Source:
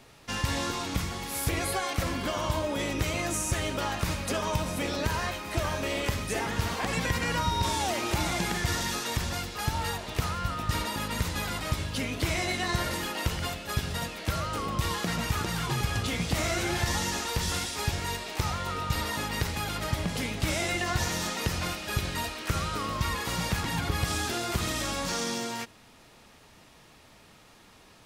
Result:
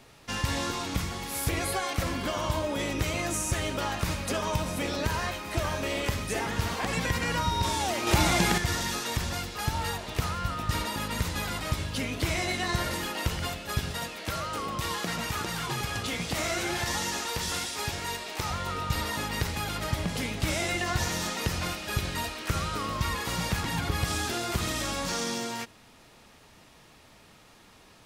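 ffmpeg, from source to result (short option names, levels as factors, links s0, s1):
-filter_complex "[0:a]asettb=1/sr,asplit=3[s0][s1][s2];[s0]atrim=end=13.914[s3];[s1]atrim=start=13.91:end=18.5,asetpts=PTS-STARTPTS,afade=t=in:d=0.004:c=qsin,afade=t=out:st=4.586:d=0.004:c=qsin,lowshelf=f=160:g=-9[s4];[s2]atrim=start=18.496[s5];[s3][s4]acrossfade=d=0.004:c1=hsin:c2=qsin[s6];[s6][s5]acrossfade=d=0.004:c1=qsin:c2=hsin,asplit=3[s7][s8][s9];[s7]atrim=end=8.072[s10];[s8]atrim=start=8.068:end=8.582,asetpts=PTS-STARTPTS,volume=1.88[s11];[s9]atrim=start=8.578[s12];[s10][s11]acrossfade=d=0.004:c1=hsin:c2=hsin[s13];[s13][s12]acrossfade=d=0.004:c1=hsin:c2=hsin"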